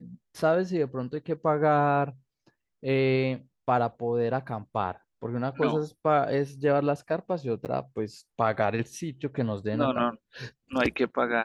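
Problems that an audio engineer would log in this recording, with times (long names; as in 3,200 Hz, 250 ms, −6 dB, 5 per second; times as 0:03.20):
0:07.65–0:07.66: drop-out 8.7 ms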